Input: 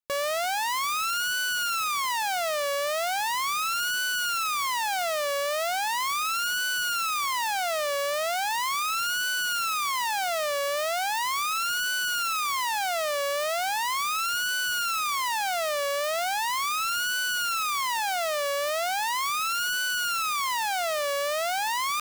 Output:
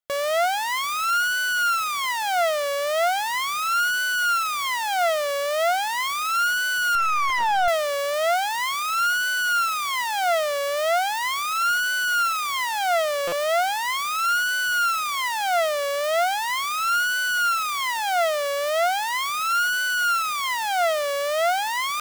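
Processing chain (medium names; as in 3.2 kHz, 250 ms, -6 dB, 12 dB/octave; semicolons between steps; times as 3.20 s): small resonant body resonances 690/1400/2000/3200 Hz, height 9 dB, ringing for 20 ms; 6.95–7.68 s: overdrive pedal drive 31 dB, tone 1.6 kHz, clips at -14.5 dBFS; buffer glitch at 13.27 s, samples 256, times 8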